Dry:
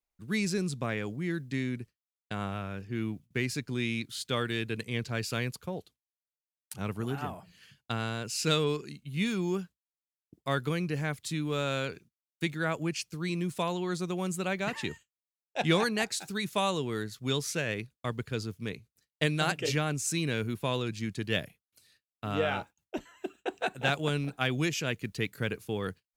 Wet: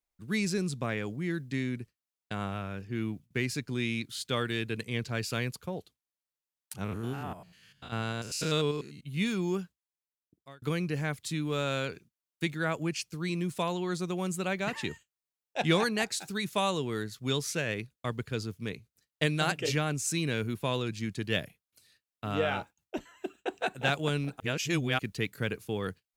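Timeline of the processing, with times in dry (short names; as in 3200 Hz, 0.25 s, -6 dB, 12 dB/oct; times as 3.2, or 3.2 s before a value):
6.84–9.03 stepped spectrum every 0.1 s
9.61–10.62 fade out
24.4–24.99 reverse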